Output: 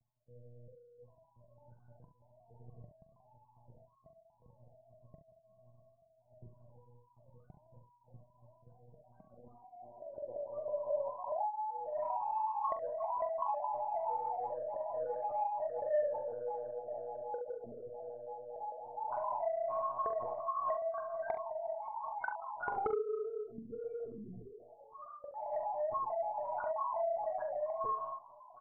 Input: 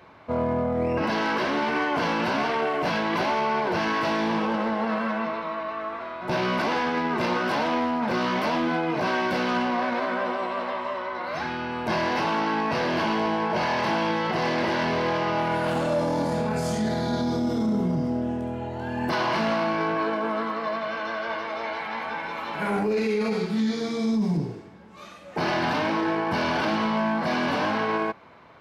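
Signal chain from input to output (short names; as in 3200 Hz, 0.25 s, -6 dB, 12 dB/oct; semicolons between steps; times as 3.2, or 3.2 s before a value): resonant low shelf 360 Hz -13.5 dB, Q 1.5; reverse; upward compressor, threshold -34 dBFS; reverse; loudest bins only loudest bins 2; monotone LPC vocoder at 8 kHz 120 Hz; soft clip -21 dBFS, distortion -15 dB; on a send: early reflections 43 ms -8.5 dB, 70 ms -9.5 dB; on the sum: low-pass sweep 150 Hz -> 1300 Hz, 8.92–11.9; gain -8.5 dB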